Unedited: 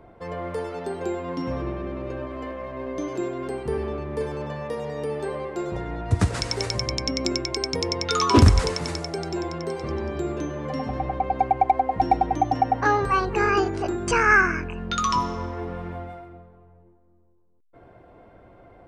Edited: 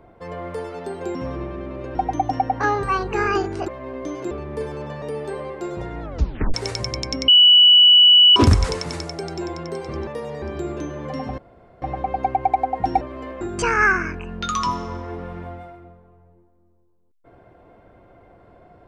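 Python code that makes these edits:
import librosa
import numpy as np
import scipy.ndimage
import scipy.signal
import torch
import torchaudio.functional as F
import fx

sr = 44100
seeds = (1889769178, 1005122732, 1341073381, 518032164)

y = fx.edit(x, sr, fx.cut(start_s=1.15, length_s=0.26),
    fx.swap(start_s=2.21, length_s=0.4, other_s=12.17, other_length_s=1.73),
    fx.cut(start_s=3.24, length_s=0.67),
    fx.move(start_s=4.62, length_s=0.35, to_s=10.02),
    fx.tape_stop(start_s=5.97, length_s=0.52),
    fx.bleep(start_s=7.23, length_s=1.08, hz=2950.0, db=-7.5),
    fx.insert_room_tone(at_s=10.98, length_s=0.44), tone=tone)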